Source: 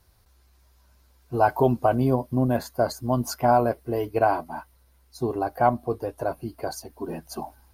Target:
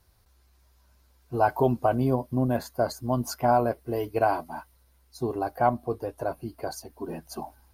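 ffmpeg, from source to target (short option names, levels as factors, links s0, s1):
-filter_complex "[0:a]asplit=3[s0][s1][s2];[s0]afade=t=out:st=3.87:d=0.02[s3];[s1]adynamicequalizer=threshold=0.0141:dfrequency=2700:dqfactor=0.7:tfrequency=2700:tqfactor=0.7:attack=5:release=100:ratio=0.375:range=2:mode=boostabove:tftype=highshelf,afade=t=in:st=3.87:d=0.02,afade=t=out:st=5.5:d=0.02[s4];[s2]afade=t=in:st=5.5:d=0.02[s5];[s3][s4][s5]amix=inputs=3:normalize=0,volume=0.75"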